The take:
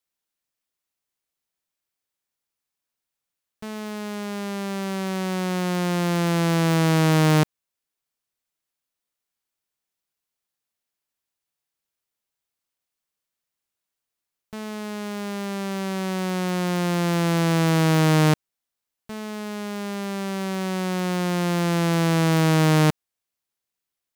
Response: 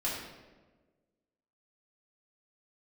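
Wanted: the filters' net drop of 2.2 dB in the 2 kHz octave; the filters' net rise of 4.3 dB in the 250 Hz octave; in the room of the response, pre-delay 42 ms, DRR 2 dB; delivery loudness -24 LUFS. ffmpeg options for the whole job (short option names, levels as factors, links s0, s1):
-filter_complex "[0:a]equalizer=f=250:t=o:g=8,equalizer=f=2000:t=o:g=-3,asplit=2[s0][s1];[1:a]atrim=start_sample=2205,adelay=42[s2];[s1][s2]afir=irnorm=-1:irlink=0,volume=0.398[s3];[s0][s3]amix=inputs=2:normalize=0,volume=0.501"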